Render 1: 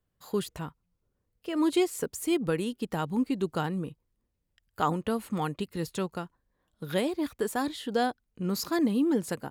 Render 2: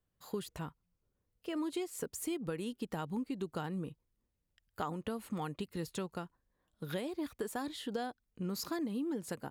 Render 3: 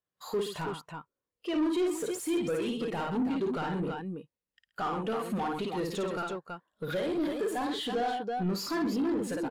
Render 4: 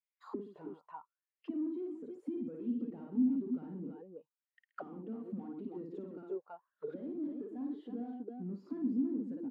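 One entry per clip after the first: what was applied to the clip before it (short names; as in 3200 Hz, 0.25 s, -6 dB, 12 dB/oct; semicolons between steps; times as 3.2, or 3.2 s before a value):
compressor, threshold -30 dBFS, peak gain reduction 10 dB; gain -4 dB
tapped delay 55/127/328 ms -4/-11/-8 dB; overdrive pedal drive 29 dB, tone 8000 Hz, clips at -22 dBFS; spectral expander 1.5:1
auto-wah 250–2200 Hz, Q 6.5, down, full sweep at -30 dBFS; gain +1.5 dB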